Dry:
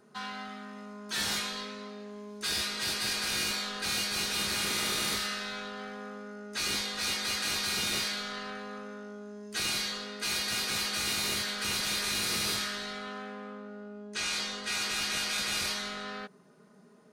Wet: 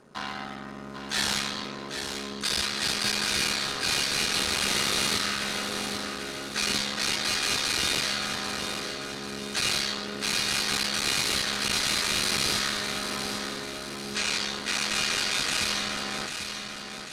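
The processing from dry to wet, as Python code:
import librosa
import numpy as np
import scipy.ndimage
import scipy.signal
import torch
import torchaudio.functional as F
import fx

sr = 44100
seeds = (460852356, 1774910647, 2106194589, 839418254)

y = fx.cycle_switch(x, sr, every=3, mode='muted')
y = scipy.signal.sosfilt(scipy.signal.butter(2, 11000.0, 'lowpass', fs=sr, output='sos'), y)
y = fx.echo_feedback(y, sr, ms=793, feedback_pct=51, wet_db=-7.5)
y = y * librosa.db_to_amplitude(6.0)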